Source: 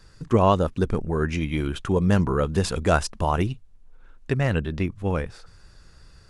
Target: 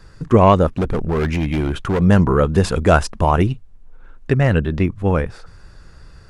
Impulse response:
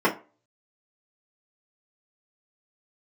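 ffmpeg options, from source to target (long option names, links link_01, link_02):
-filter_complex "[0:a]acrossover=split=2300[link_01][link_02];[link_01]acontrast=66[link_03];[link_03][link_02]amix=inputs=2:normalize=0,asplit=3[link_04][link_05][link_06];[link_04]afade=type=out:start_time=0.75:duration=0.02[link_07];[link_05]volume=17dB,asoftclip=hard,volume=-17dB,afade=type=in:start_time=0.75:duration=0.02,afade=type=out:start_time=2:duration=0.02[link_08];[link_06]afade=type=in:start_time=2:duration=0.02[link_09];[link_07][link_08][link_09]amix=inputs=3:normalize=0,volume=1.5dB"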